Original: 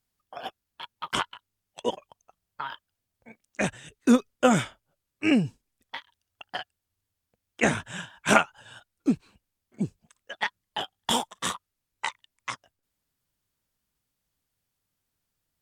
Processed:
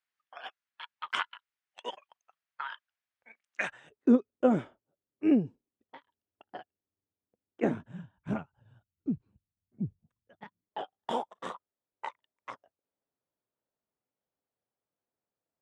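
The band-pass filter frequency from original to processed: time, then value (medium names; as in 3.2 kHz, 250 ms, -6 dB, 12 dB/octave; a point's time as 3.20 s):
band-pass filter, Q 1.3
3.62 s 1.8 kHz
4.09 s 350 Hz
7.64 s 350 Hz
8.16 s 110 Hz
10.37 s 110 Hz
10.79 s 540 Hz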